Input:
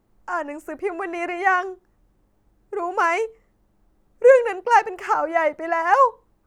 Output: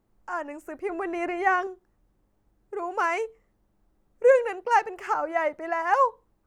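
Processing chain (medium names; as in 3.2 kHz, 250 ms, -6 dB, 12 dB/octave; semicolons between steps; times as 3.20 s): 0.89–1.67 s: bass shelf 490 Hz +7.5 dB; trim -5.5 dB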